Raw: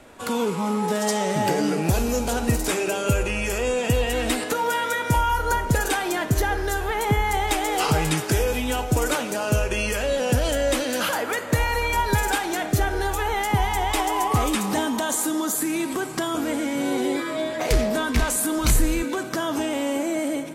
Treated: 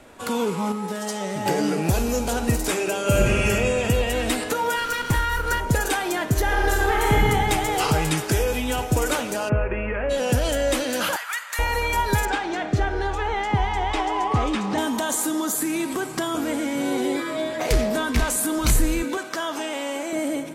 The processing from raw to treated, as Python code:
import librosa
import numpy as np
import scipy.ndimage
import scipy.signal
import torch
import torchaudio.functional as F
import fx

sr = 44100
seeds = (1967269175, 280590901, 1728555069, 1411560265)

y = fx.comb_fb(x, sr, f0_hz=98.0, decay_s=0.17, harmonics='all', damping=0.0, mix_pct=70, at=(0.72, 1.46))
y = fx.reverb_throw(y, sr, start_s=3.02, length_s=0.45, rt60_s=2.5, drr_db=-3.0)
y = fx.lower_of_two(y, sr, delay_ms=0.69, at=(4.75, 5.59), fade=0.02)
y = fx.reverb_throw(y, sr, start_s=6.42, length_s=0.84, rt60_s=1.8, drr_db=-2.5)
y = fx.echo_throw(y, sr, start_s=8.31, length_s=0.43, ms=460, feedback_pct=15, wet_db=-14.5)
y = fx.steep_lowpass(y, sr, hz=2400.0, slope=48, at=(9.48, 10.09), fade=0.02)
y = fx.highpass(y, sr, hz=1100.0, slope=24, at=(11.16, 11.59))
y = fx.air_absorb(y, sr, metres=130.0, at=(12.25, 14.78))
y = fx.weighting(y, sr, curve='A', at=(19.17, 20.13))